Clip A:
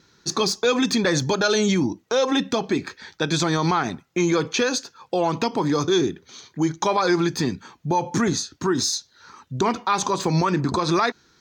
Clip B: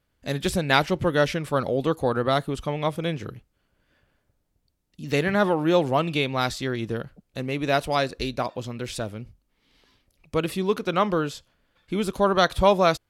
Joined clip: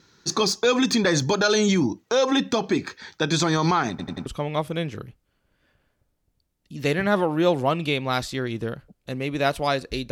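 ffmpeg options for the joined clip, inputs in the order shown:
ffmpeg -i cue0.wav -i cue1.wav -filter_complex "[0:a]apad=whole_dur=10.11,atrim=end=10.11,asplit=4[link_01][link_02][link_03][link_04];[link_01]atrim=end=3.992[link_05];[link_02]atrim=start=3.898:end=3.992[link_06];[link_03]atrim=start=3.898:end=3.992[link_07];[link_04]atrim=start=3.898:end=3.992[link_08];[1:a]atrim=start=2.538:end=8.39[link_09];[link_05][link_06]acrossfade=duration=0.004:curve1=hsin:curve2=hsin[link_10];[link_10][link_07]acrossfade=duration=0.004:curve1=hsin:curve2=hsin[link_11];[link_11][link_08]acrossfade=duration=0.004:curve1=hsin:curve2=hsin[link_12];[link_12][link_09]acrossfade=duration=0.004:curve1=hsin:curve2=hsin" out.wav

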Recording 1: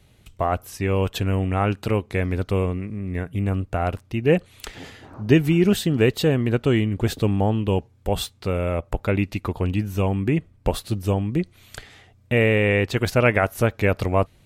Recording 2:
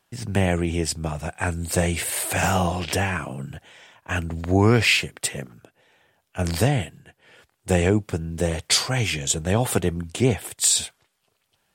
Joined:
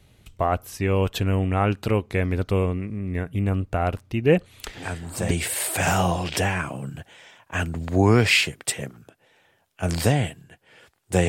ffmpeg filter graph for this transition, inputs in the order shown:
ffmpeg -i cue0.wav -i cue1.wav -filter_complex "[1:a]asplit=2[link_01][link_02];[0:a]apad=whole_dur=11.28,atrim=end=11.28,atrim=end=5.312[link_03];[link_02]atrim=start=1.868:end=7.84[link_04];[link_01]atrim=start=1.37:end=1.87,asetpts=PTS-STARTPTS,volume=-6.5dB,afade=type=in:duration=0.004:curve=hsin,afade=type=out:start_time=0.496:duration=0.004:curve=hsin,adelay=212121S[link_05];[link_03][link_04]acrossfade=duration=0.004:curve1=hsin:curve2=hsin[link_06];[link_06][link_05]amix=inputs=2:normalize=0" out.wav

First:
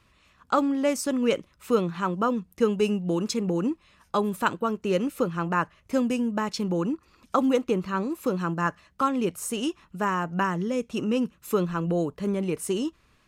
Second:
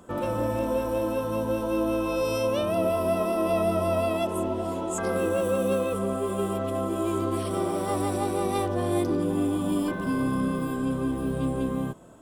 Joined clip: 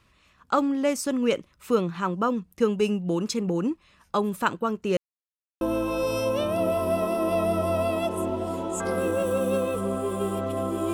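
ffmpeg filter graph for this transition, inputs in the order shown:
ffmpeg -i cue0.wav -i cue1.wav -filter_complex "[0:a]apad=whole_dur=10.93,atrim=end=10.93,asplit=2[link_01][link_02];[link_01]atrim=end=4.97,asetpts=PTS-STARTPTS,afade=type=out:start_time=4.966:duration=0.004:curve=hsin[link_03];[link_02]atrim=start=4.97:end=5.61,asetpts=PTS-STARTPTS,volume=0[link_04];[1:a]atrim=start=1.79:end=7.11,asetpts=PTS-STARTPTS,afade=type=in:duration=0.004:curve=hsin[link_05];[link_03][link_04][link_05]concat=n=3:v=0:a=1" out.wav

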